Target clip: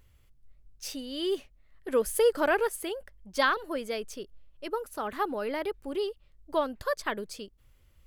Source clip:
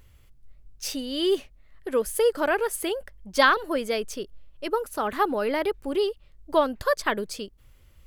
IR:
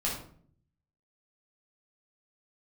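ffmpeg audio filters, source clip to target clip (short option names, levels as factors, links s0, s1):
-filter_complex "[0:a]asettb=1/sr,asplit=3[s0][s1][s2];[s0]atrim=end=1.884[s3];[s1]atrim=start=1.88:end=2.69,asetpts=PTS-STARTPTS,afade=t=in:d=0.004:c=qsin,afade=t=out:st=0.806:d=0.004:c=qsin,acontrast=31[s4];[s2]atrim=start=2.686[s5];[s3][s4]acrossfade=d=0.004:c1=hsin:c2=qsin[s6];[s6][s5]acrossfade=d=0.004:c1=qsin:c2=hsin,volume=0.473"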